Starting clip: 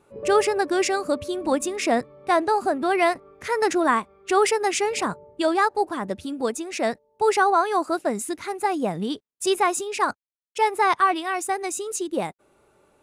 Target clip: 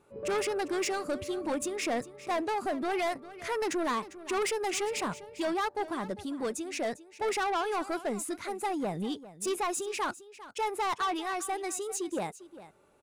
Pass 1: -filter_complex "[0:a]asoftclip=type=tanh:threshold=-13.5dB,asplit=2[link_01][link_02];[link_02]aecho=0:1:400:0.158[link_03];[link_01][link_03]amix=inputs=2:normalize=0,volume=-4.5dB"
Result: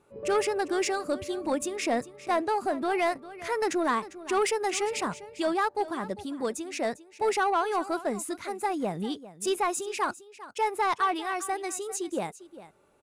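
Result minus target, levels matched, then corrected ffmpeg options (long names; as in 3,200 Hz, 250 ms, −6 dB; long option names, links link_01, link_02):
soft clipping: distortion −9 dB
-filter_complex "[0:a]asoftclip=type=tanh:threshold=-22dB,asplit=2[link_01][link_02];[link_02]aecho=0:1:400:0.158[link_03];[link_01][link_03]amix=inputs=2:normalize=0,volume=-4.5dB"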